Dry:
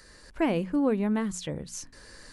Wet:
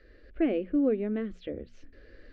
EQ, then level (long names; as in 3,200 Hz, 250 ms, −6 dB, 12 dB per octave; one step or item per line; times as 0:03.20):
low-pass filter 3,100 Hz 24 dB per octave
tilt shelving filter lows +4 dB, about 1,100 Hz
phaser with its sweep stopped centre 390 Hz, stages 4
−1.5 dB